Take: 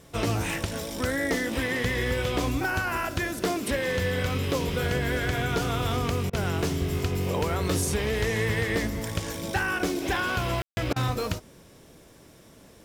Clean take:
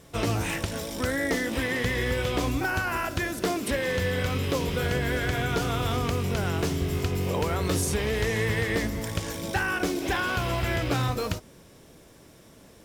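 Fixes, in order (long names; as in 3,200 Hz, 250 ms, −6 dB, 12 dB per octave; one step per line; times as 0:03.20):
ambience match 0:10.62–0:10.77
repair the gap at 0:06.30/0:10.93, 30 ms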